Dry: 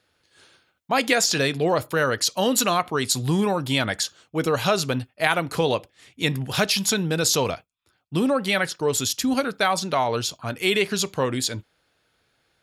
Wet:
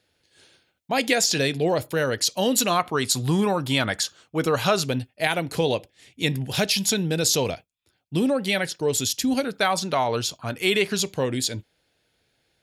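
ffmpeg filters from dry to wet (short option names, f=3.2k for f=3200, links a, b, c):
-af "asetnsamples=n=441:p=0,asendcmd='2.7 equalizer g 0.5;4.84 equalizer g -10;9.56 equalizer g -2;11 equalizer g -10',equalizer=f=1.2k:t=o:w=0.7:g=-9"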